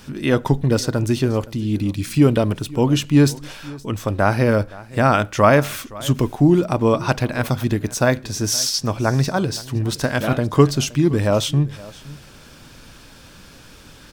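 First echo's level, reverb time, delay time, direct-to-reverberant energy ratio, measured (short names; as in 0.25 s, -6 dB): -20.5 dB, none, 0.519 s, none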